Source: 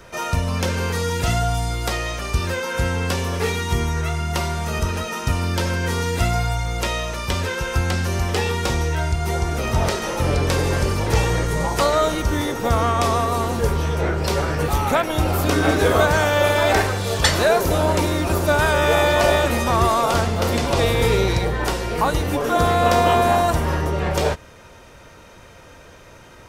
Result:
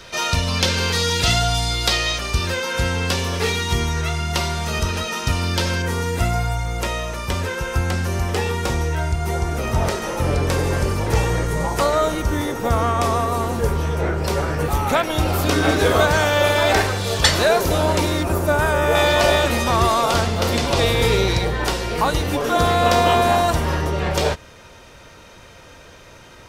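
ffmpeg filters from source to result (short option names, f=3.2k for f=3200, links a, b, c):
-af "asetnsamples=n=441:p=0,asendcmd='2.18 equalizer g 6.5;5.82 equalizer g -3;14.89 equalizer g 3.5;18.23 equalizer g -6.5;18.95 equalizer g 4.5',equalizer=f=4k:t=o:w=1.5:g=13"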